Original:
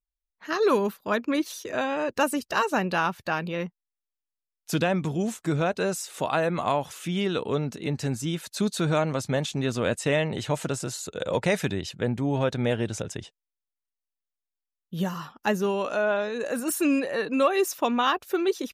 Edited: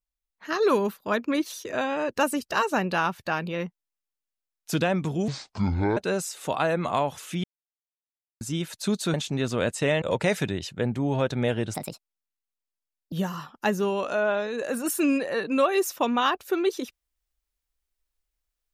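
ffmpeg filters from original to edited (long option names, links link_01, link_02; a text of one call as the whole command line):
ffmpeg -i in.wav -filter_complex "[0:a]asplit=9[link_01][link_02][link_03][link_04][link_05][link_06][link_07][link_08][link_09];[link_01]atrim=end=5.284[link_10];[link_02]atrim=start=5.28:end=5.7,asetpts=PTS-STARTPTS,asetrate=26901,aresample=44100[link_11];[link_03]atrim=start=5.696:end=7.17,asetpts=PTS-STARTPTS,afade=type=out:start_time=1.47:duration=0.004:curve=hsin[link_12];[link_04]atrim=start=7.17:end=8.14,asetpts=PTS-STARTPTS,volume=0[link_13];[link_05]atrim=start=8.14:end=8.872,asetpts=PTS-STARTPTS,afade=type=in:duration=0.004:curve=hsin[link_14];[link_06]atrim=start=9.378:end=10.262[link_15];[link_07]atrim=start=11.238:end=12.964[link_16];[link_08]atrim=start=12.96:end=14.94,asetpts=PTS-STARTPTS,asetrate=63063,aresample=44100[link_17];[link_09]atrim=start=14.936[link_18];[link_10][link_11]acrossfade=duration=0.004:curve1=hsin:curve2=hsin[link_19];[link_12][link_13][link_14]concat=n=3:v=0:a=1[link_20];[link_19][link_20]acrossfade=duration=0.004:curve1=hsin:curve2=hsin[link_21];[link_21][link_15]acrossfade=duration=0.004:curve1=hsin:curve2=hsin[link_22];[link_22][link_16]acrossfade=duration=0.004:curve1=hsin:curve2=hsin[link_23];[link_23][link_17]acrossfade=duration=0.004:curve1=hsin:curve2=hsin[link_24];[link_24][link_18]acrossfade=duration=0.004:curve1=hsin:curve2=hsin" out.wav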